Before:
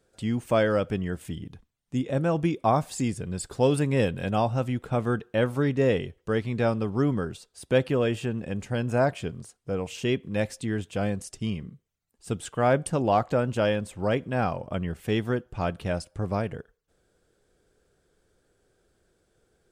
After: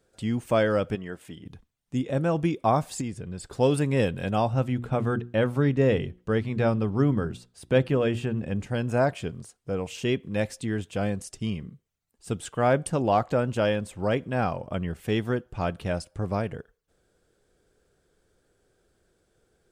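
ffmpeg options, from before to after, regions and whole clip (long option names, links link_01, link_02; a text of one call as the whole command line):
ffmpeg -i in.wav -filter_complex "[0:a]asettb=1/sr,asplit=3[link_01][link_02][link_03];[link_01]atrim=end=0.954[link_04];[link_02]atrim=start=0.95:end=1.46,asetpts=PTS-STARTPTS,afade=type=in:duration=0.004:curve=qsin,afade=type=out:start_time=0.506:duration=0.004:curve=qsin,highpass=frequency=410:poles=1,highshelf=frequency=3900:gain=-7[link_05];[link_03]atrim=start=1.456[link_06];[link_04][link_05]acrossfade=duration=0.004:curve1=hsin:curve2=qsin[link_07];[link_07][link_06]acrossfade=duration=0.004:curve1=qsin:curve2=hsin,asettb=1/sr,asplit=3[link_08][link_09][link_10];[link_08]atrim=end=3.014[link_11];[link_09]atrim=start=3.01:end=3.53,asetpts=PTS-STARTPTS,afade=type=in:duration=0.004:curve=qsin,afade=type=out:start_time=0.516:duration=0.004:curve=qsin,highshelf=frequency=6700:gain=-9.5,acompressor=threshold=-37dB:ratio=1.5:attack=3.2:release=140:knee=1:detection=peak[link_12];[link_10]atrim=start=3.526[link_13];[link_11][link_12]acrossfade=duration=0.004:curve1=hsin:curve2=qsin[link_14];[link_14][link_13]acrossfade=duration=0.004:curve1=qsin:curve2=hsin,asettb=1/sr,asplit=3[link_15][link_16][link_17];[link_15]atrim=end=4.534[link_18];[link_16]atrim=start=4.53:end=8.67,asetpts=PTS-STARTPTS,afade=type=in:duration=0.004:curve=qsin,afade=type=out:start_time=4.136:duration=0.004:curve=qsin,bass=frequency=250:gain=4,treble=frequency=4000:gain=-4,bandreject=frequency=60:width_type=h:width=6,bandreject=frequency=120:width_type=h:width=6,bandreject=frequency=180:width_type=h:width=6,bandreject=frequency=240:width_type=h:width=6,bandreject=frequency=300:width_type=h:width=6,bandreject=frequency=360:width_type=h:width=6[link_19];[link_17]atrim=start=8.666[link_20];[link_18][link_19]acrossfade=duration=0.004:curve1=hsin:curve2=qsin[link_21];[link_21][link_20]acrossfade=duration=0.004:curve1=qsin:curve2=hsin" out.wav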